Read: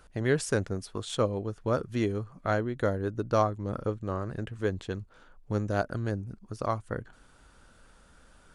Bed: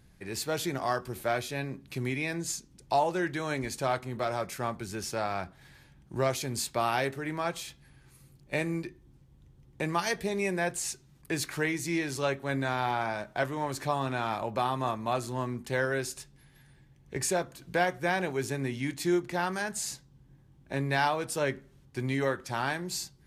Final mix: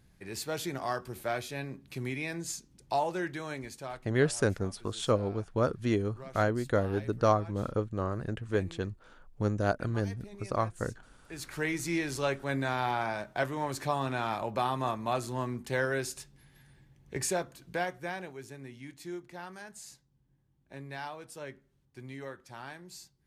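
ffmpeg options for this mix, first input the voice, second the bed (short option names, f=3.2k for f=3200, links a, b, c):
-filter_complex "[0:a]adelay=3900,volume=0dB[a];[1:a]volume=14.5dB,afade=t=out:st=3.19:d=0.96:silence=0.16788,afade=t=in:st=11.26:d=0.48:silence=0.125893,afade=t=out:st=17.11:d=1.27:silence=0.237137[b];[a][b]amix=inputs=2:normalize=0"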